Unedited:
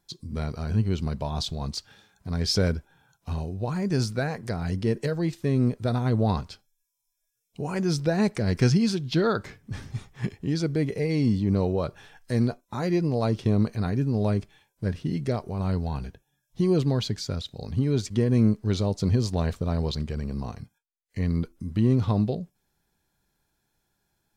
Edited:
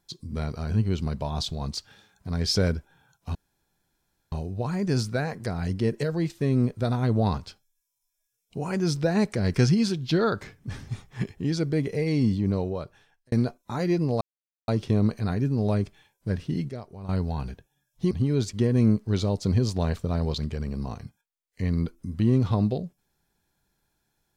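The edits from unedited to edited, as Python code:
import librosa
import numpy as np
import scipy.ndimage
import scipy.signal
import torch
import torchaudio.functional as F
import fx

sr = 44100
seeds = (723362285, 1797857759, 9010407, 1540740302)

y = fx.edit(x, sr, fx.insert_room_tone(at_s=3.35, length_s=0.97),
    fx.fade_out_span(start_s=11.34, length_s=1.01),
    fx.insert_silence(at_s=13.24, length_s=0.47),
    fx.clip_gain(start_s=15.25, length_s=0.4, db=-10.0),
    fx.cut(start_s=16.67, length_s=1.01), tone=tone)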